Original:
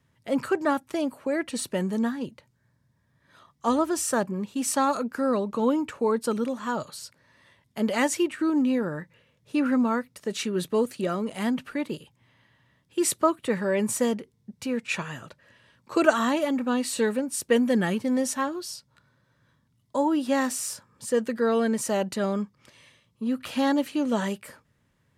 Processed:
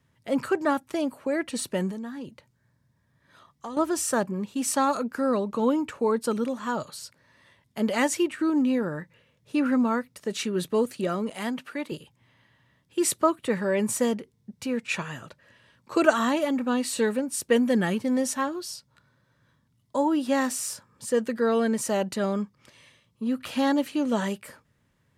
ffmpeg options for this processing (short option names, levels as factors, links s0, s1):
-filter_complex "[0:a]asettb=1/sr,asplit=3[s0][s1][s2];[s0]atrim=end=1.914[s3];[s1]atrim=start=1.91:end=3.77,asetpts=PTS-STARTPTS,afade=t=in:d=0.004:c=qsin,afade=t=out:st=1.856:d=0.004:c=qsin,acompressor=threshold=0.0224:ratio=6:attack=3.2:release=140:knee=1:detection=peak[s4];[s2]atrim=start=3.766[s5];[s3][s4]acrossfade=d=0.004:c1=hsin:c2=qsin[s6];[s6][s5]acrossfade=d=0.004:c1=qsin:c2=hsin,asettb=1/sr,asplit=3[s7][s8][s9];[s7]atrim=end=11.304[s10];[s8]atrim=start=11.3:end=11.92,asetpts=PTS-STARTPTS,afade=t=in:d=0.004:c=qsin,afade=t=out:st=0.616:d=0.004:c=qsin,highpass=f=360:p=1[s11];[s9]atrim=start=11.916[s12];[s10][s11]acrossfade=d=0.004:c1=hsin:c2=qsin[s13];[s13][s12]acrossfade=d=0.004:c1=qsin:c2=hsin"